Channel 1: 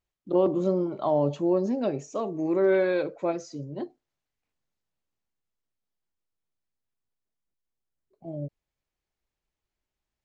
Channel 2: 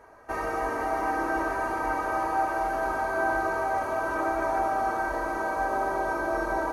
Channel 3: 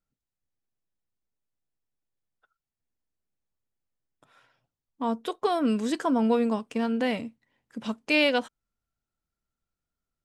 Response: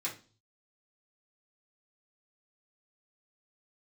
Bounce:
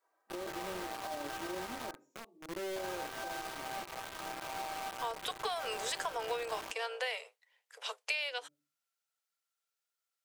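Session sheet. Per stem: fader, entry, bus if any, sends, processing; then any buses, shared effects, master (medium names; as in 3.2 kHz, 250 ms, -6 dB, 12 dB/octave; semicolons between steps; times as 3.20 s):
-13.5 dB, 0.00 s, bus A, send -19.5 dB, high-pass 210 Hz 24 dB/octave
-10.0 dB, 0.00 s, muted 1.91–2.76 s, bus A, send -15.5 dB, high-pass 480 Hz 12 dB/octave; treble shelf 3.4 kHz -8.5 dB
-2.0 dB, 0.00 s, no bus, no send, octave divider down 2 oct, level +3 dB; Chebyshev high-pass 430 Hz, order 8; tilt shelf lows -7.5 dB, about 1.1 kHz
bus A: 0.0 dB, bit crusher 6-bit; peak limiter -35.5 dBFS, peak gain reduction 11.5 dB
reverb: on, RT60 0.35 s, pre-delay 3 ms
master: compression 12:1, threshold -32 dBFS, peak gain reduction 15 dB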